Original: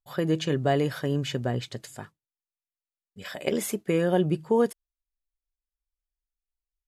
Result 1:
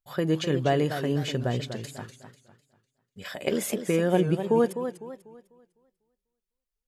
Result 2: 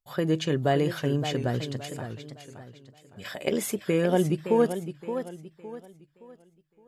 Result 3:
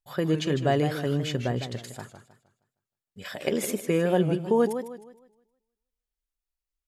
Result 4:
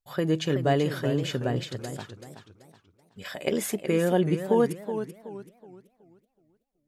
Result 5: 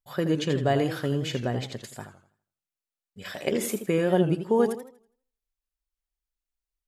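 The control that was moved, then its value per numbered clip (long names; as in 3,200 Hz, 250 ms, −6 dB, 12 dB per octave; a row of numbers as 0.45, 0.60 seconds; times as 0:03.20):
feedback echo with a swinging delay time, delay time: 249, 566, 156, 378, 82 milliseconds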